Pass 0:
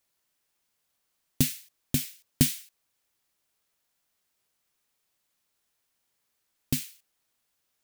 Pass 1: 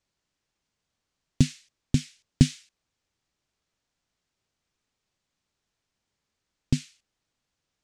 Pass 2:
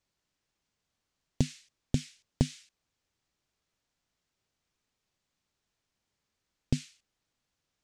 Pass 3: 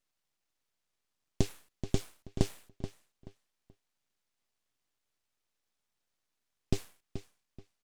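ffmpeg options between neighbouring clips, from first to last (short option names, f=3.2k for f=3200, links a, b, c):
-af "lowpass=f=7.3k:w=0.5412,lowpass=f=7.3k:w=1.3066,lowshelf=f=280:g=11,volume=-2dB"
-af "acompressor=threshold=-20dB:ratio=6,volume=-1.5dB"
-filter_complex "[0:a]asplit=2[a][b];[b]adelay=430,lowpass=f=4.1k:p=1,volume=-10.5dB,asplit=2[c][d];[d]adelay=430,lowpass=f=4.1k:p=1,volume=0.26,asplit=2[e][f];[f]adelay=430,lowpass=f=4.1k:p=1,volume=0.26[g];[a][c][e][g]amix=inputs=4:normalize=0,aeval=exprs='abs(val(0))':c=same"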